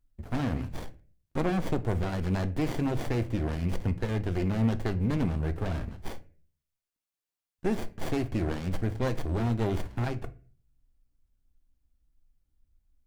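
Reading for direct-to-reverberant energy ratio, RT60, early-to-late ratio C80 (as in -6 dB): 11.0 dB, 0.40 s, 23.0 dB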